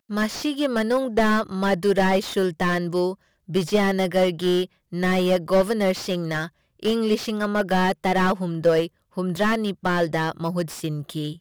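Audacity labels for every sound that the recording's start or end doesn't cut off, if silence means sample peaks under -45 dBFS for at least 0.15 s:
3.480000	4.660000	sound
4.920000	6.490000	sound
6.800000	8.880000	sound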